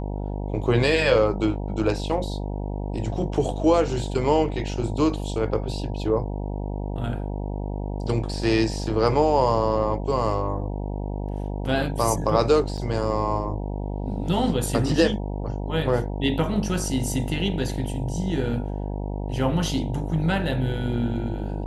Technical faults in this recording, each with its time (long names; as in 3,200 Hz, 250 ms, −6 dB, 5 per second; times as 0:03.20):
mains buzz 50 Hz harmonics 19 −29 dBFS
0:12.77–0:12.78: drop-out 6.6 ms